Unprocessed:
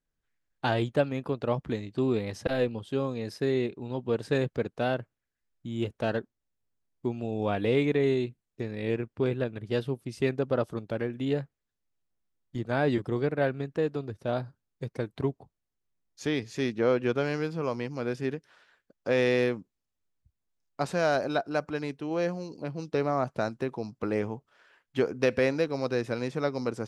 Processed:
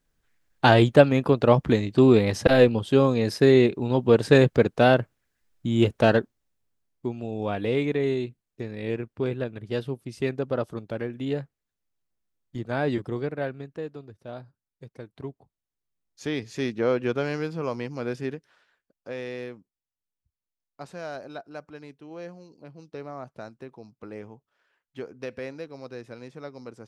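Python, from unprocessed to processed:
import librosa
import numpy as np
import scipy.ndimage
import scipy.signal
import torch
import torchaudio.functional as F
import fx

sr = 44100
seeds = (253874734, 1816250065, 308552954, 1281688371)

y = fx.gain(x, sr, db=fx.line((6.04, 10.5), (7.13, 0.0), (13.02, 0.0), (14.13, -9.0), (15.04, -9.0), (16.51, 1.0), (18.16, 1.0), (19.21, -10.5)))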